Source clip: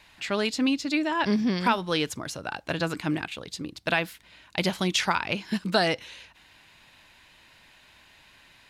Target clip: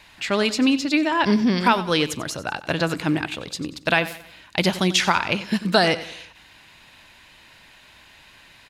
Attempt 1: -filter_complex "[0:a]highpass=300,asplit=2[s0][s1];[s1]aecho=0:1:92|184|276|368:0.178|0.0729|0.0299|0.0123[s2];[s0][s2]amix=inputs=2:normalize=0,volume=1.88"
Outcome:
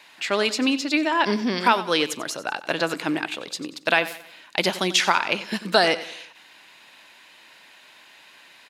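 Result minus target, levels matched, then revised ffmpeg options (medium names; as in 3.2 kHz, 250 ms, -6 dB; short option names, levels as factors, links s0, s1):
250 Hz band -3.5 dB
-filter_complex "[0:a]asplit=2[s0][s1];[s1]aecho=0:1:92|184|276|368:0.178|0.0729|0.0299|0.0123[s2];[s0][s2]amix=inputs=2:normalize=0,volume=1.88"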